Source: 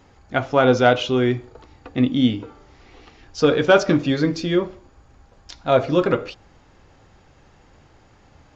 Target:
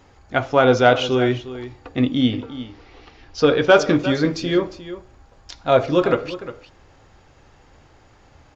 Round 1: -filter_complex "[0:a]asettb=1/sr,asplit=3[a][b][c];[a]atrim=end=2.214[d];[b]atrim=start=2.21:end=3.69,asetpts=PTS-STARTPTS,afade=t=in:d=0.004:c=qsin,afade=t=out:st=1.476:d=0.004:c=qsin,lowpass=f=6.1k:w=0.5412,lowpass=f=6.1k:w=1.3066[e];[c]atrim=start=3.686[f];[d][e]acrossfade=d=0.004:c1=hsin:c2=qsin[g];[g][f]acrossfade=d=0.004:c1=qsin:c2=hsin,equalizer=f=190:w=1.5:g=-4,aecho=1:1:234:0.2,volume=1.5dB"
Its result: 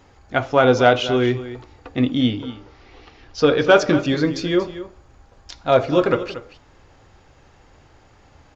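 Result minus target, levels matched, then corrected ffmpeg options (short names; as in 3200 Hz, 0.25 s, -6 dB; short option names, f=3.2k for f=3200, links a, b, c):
echo 0.12 s early
-filter_complex "[0:a]asettb=1/sr,asplit=3[a][b][c];[a]atrim=end=2.214[d];[b]atrim=start=2.21:end=3.69,asetpts=PTS-STARTPTS,afade=t=in:d=0.004:c=qsin,afade=t=out:st=1.476:d=0.004:c=qsin,lowpass=f=6.1k:w=0.5412,lowpass=f=6.1k:w=1.3066[e];[c]atrim=start=3.686[f];[d][e]acrossfade=d=0.004:c1=hsin:c2=qsin[g];[g][f]acrossfade=d=0.004:c1=qsin:c2=hsin,equalizer=f=190:w=1.5:g=-4,aecho=1:1:354:0.2,volume=1.5dB"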